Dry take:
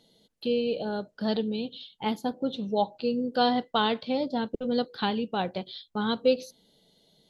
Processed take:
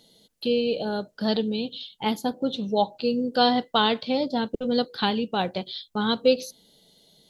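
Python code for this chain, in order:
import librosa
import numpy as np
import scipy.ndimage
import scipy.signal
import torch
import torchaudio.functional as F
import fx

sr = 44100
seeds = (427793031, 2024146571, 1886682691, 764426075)

y = fx.high_shelf(x, sr, hz=4500.0, db=8.0)
y = y * 10.0 ** (3.0 / 20.0)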